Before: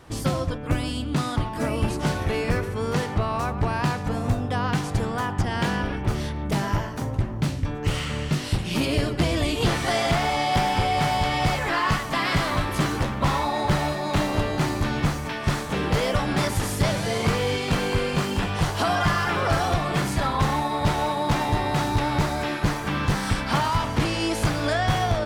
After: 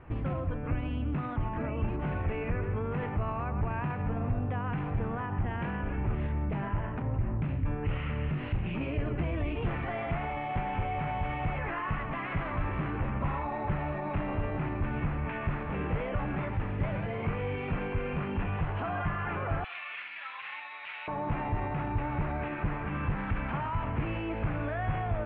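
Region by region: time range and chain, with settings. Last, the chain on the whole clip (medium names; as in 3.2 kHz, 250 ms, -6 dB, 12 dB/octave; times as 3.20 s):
19.64–21.08 s: resonant high-pass 2.5 kHz, resonance Q 1.5 + resonant high shelf 5.5 kHz -7 dB, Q 3
whole clip: peak limiter -22.5 dBFS; elliptic low-pass 2.6 kHz, stop band 60 dB; bass shelf 120 Hz +9.5 dB; trim -4 dB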